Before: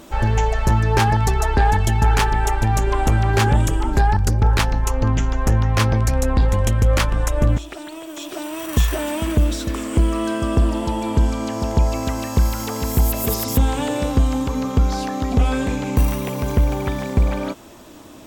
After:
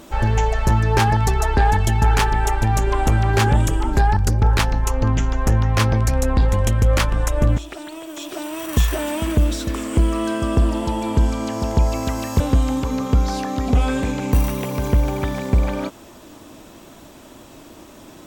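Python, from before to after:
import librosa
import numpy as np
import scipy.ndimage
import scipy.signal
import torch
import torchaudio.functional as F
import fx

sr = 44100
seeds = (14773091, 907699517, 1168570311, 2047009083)

y = fx.edit(x, sr, fx.cut(start_s=12.4, length_s=1.64), tone=tone)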